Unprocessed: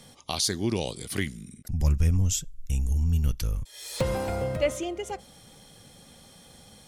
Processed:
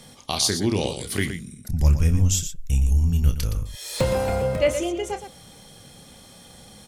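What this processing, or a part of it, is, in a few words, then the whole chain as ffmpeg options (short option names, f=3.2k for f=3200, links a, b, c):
slapback doubling: -filter_complex "[0:a]asplit=3[a][b][c];[b]adelay=29,volume=-9dB[d];[c]adelay=118,volume=-9.5dB[e];[a][d][e]amix=inputs=3:normalize=0,volume=4dB"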